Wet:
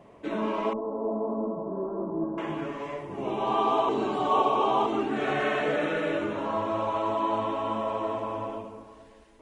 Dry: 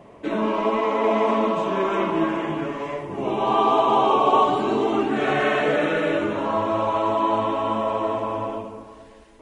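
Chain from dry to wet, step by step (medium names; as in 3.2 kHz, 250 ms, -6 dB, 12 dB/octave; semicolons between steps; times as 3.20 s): 0.73–2.38 s: Gaussian low-pass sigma 11 samples; 3.89–4.86 s: reverse; trim -6 dB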